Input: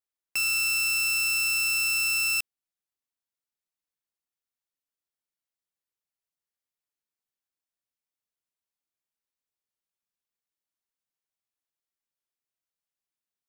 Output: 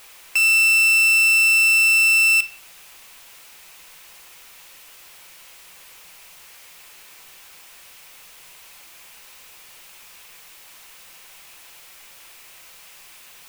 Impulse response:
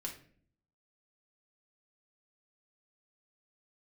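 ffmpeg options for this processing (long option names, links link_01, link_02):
-filter_complex "[0:a]aeval=exprs='val(0)+0.5*0.00891*sgn(val(0))':channel_layout=same,equalizer=frequency=100:width_type=o:width=0.67:gain=-7,equalizer=frequency=250:width_type=o:width=0.67:gain=-10,equalizer=frequency=1000:width_type=o:width=0.67:gain=3,equalizer=frequency=2500:width_type=o:width=0.67:gain=7,asplit=2[link_01][link_02];[1:a]atrim=start_sample=2205[link_03];[link_02][link_03]afir=irnorm=-1:irlink=0,volume=-3.5dB[link_04];[link_01][link_04]amix=inputs=2:normalize=0"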